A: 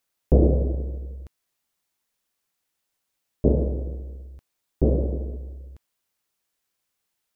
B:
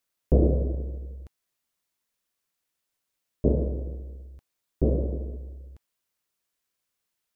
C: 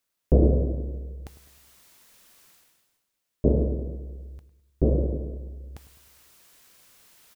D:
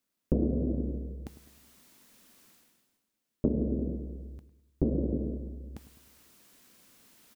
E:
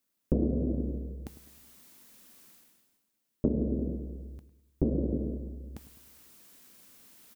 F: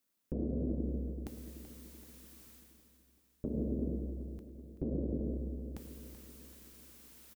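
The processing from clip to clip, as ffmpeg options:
ffmpeg -i in.wav -af "bandreject=frequency=810:width=12,volume=-3dB" out.wav
ffmpeg -i in.wav -filter_complex "[0:a]areverse,acompressor=mode=upward:threshold=-38dB:ratio=2.5,areverse,asplit=2[link_01][link_02];[link_02]adelay=103,lowpass=frequency=870:poles=1,volume=-12.5dB,asplit=2[link_03][link_04];[link_04]adelay=103,lowpass=frequency=870:poles=1,volume=0.54,asplit=2[link_05][link_06];[link_06]adelay=103,lowpass=frequency=870:poles=1,volume=0.54,asplit=2[link_07][link_08];[link_08]adelay=103,lowpass=frequency=870:poles=1,volume=0.54,asplit=2[link_09][link_10];[link_10]adelay=103,lowpass=frequency=870:poles=1,volume=0.54,asplit=2[link_11][link_12];[link_12]adelay=103,lowpass=frequency=870:poles=1,volume=0.54[link_13];[link_01][link_03][link_05][link_07][link_09][link_11][link_13]amix=inputs=7:normalize=0,volume=1.5dB" out.wav
ffmpeg -i in.wav -af "equalizer=frequency=240:width=1.2:gain=12.5,acompressor=threshold=-20dB:ratio=6,volume=-4dB" out.wav
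ffmpeg -i in.wav -af "highshelf=frequency=8800:gain=6" out.wav
ffmpeg -i in.wav -filter_complex "[0:a]alimiter=level_in=0.5dB:limit=-24dB:level=0:latency=1:release=233,volume=-0.5dB,asplit=2[link_01][link_02];[link_02]aecho=0:1:382|764|1146|1528|1910|2292:0.251|0.136|0.0732|0.0396|0.0214|0.0115[link_03];[link_01][link_03]amix=inputs=2:normalize=0,volume=-1.5dB" out.wav

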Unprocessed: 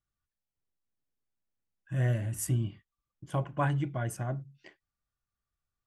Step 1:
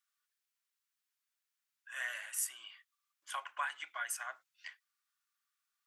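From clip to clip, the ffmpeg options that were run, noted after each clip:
ffmpeg -i in.wav -af "highpass=frequency=1200:width=0.5412,highpass=frequency=1200:width=1.3066,acompressor=threshold=-42dB:ratio=3,volume=7dB" out.wav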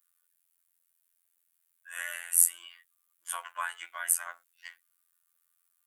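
ffmpeg -i in.wav -af "afftfilt=real='hypot(re,im)*cos(PI*b)':imag='0':win_size=2048:overlap=0.75,highshelf=frequency=7600:width_type=q:width=1.5:gain=11,volume=6.5dB" out.wav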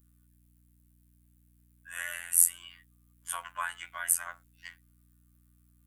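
ffmpeg -i in.wav -af "aeval=exprs='val(0)+0.000708*(sin(2*PI*60*n/s)+sin(2*PI*2*60*n/s)/2+sin(2*PI*3*60*n/s)/3+sin(2*PI*4*60*n/s)/4+sin(2*PI*5*60*n/s)/5)':channel_layout=same" out.wav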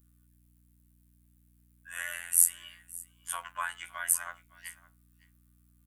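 ffmpeg -i in.wav -af "aecho=1:1:562:0.0891" out.wav

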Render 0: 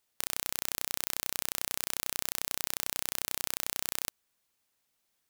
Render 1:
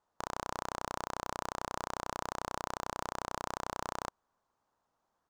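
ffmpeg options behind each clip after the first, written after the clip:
ffmpeg -i in.wav -af "firequalizer=gain_entry='entry(310,0);entry(990,8);entry(2200,-15);entry(6600,-14);entry(11000,-29)':delay=0.05:min_phase=1,volume=3.5dB" out.wav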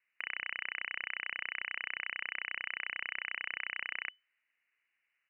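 ffmpeg -i in.wav -af "lowpass=frequency=2600:width_type=q:width=0.5098,lowpass=frequency=2600:width_type=q:width=0.6013,lowpass=frequency=2600:width_type=q:width=0.9,lowpass=frequency=2600:width_type=q:width=2.563,afreqshift=-3000" out.wav

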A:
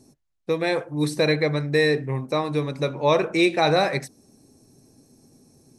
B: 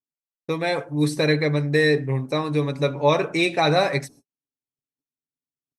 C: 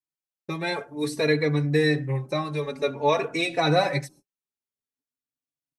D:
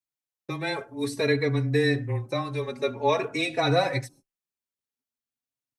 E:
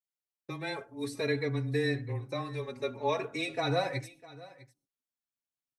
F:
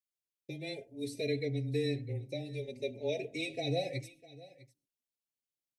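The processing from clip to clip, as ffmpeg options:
ffmpeg -i in.wav -af "agate=range=-50dB:threshold=-47dB:ratio=16:detection=peak,aecho=1:1:7.1:0.46" out.wav
ffmpeg -i in.wav -filter_complex "[0:a]asplit=2[link_01][link_02];[link_02]adelay=3.5,afreqshift=0.51[link_03];[link_01][link_03]amix=inputs=2:normalize=1" out.wav
ffmpeg -i in.wav -af "afreqshift=-15,volume=-1.5dB" out.wav
ffmpeg -i in.wav -af "aecho=1:1:652:0.106,volume=-7dB" out.wav
ffmpeg -i in.wav -af "asuperstop=centerf=1200:order=8:qfactor=0.82,volume=-2.5dB" out.wav

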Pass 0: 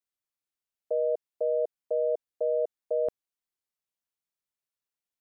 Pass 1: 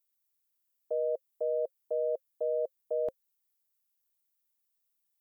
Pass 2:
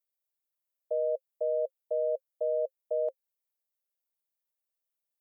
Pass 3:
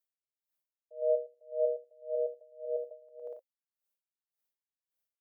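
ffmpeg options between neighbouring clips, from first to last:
ffmpeg -i in.wav -af "aemphasis=mode=production:type=50fm,bandreject=frequency=530:width=12,volume=-3dB" out.wav
ffmpeg -i in.wav -af "highpass=frequency=550:width_type=q:width=4.9,volume=-8.5dB" out.wav
ffmpeg -i in.wav -af "aecho=1:1:110|187|240.9|278.6|305:0.631|0.398|0.251|0.158|0.1,aeval=exprs='val(0)*pow(10,-31*(0.5-0.5*cos(2*PI*1.8*n/s))/20)':channel_layout=same" out.wav

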